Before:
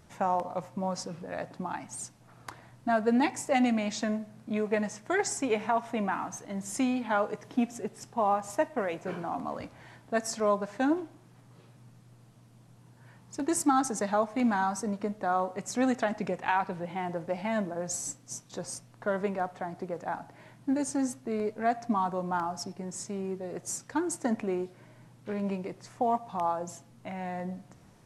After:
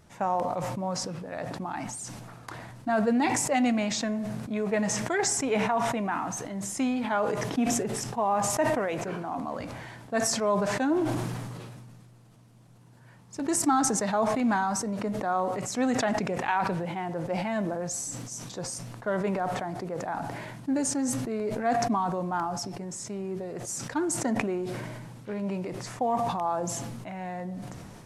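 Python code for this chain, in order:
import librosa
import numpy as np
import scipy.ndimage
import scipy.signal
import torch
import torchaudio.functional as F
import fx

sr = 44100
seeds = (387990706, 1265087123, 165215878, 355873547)

y = fx.sustainer(x, sr, db_per_s=26.0)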